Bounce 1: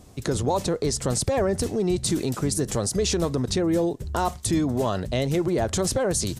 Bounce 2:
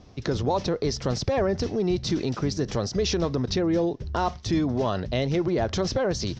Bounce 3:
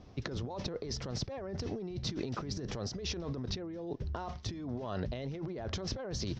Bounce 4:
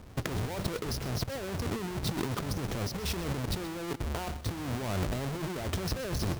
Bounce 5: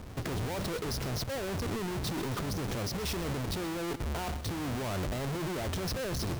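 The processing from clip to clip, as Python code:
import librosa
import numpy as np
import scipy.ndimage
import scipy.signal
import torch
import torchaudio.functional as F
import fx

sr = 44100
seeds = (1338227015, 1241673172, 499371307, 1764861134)

y1 = scipy.signal.sosfilt(scipy.signal.ellip(4, 1.0, 50, 5700.0, 'lowpass', fs=sr, output='sos'), x)
y2 = fx.high_shelf(y1, sr, hz=6300.0, db=-10.0)
y2 = fx.over_compress(y2, sr, threshold_db=-30.0, ratio=-1.0)
y2 = y2 * librosa.db_to_amplitude(-8.0)
y3 = fx.halfwave_hold(y2, sr)
y3 = y3 + 10.0 ** (-15.0 / 20.0) * np.pad(y3, (int(128 * sr / 1000.0), 0))[:len(y3)]
y4 = 10.0 ** (-36.5 / 20.0) * np.tanh(y3 / 10.0 ** (-36.5 / 20.0))
y4 = y4 * librosa.db_to_amplitude(5.0)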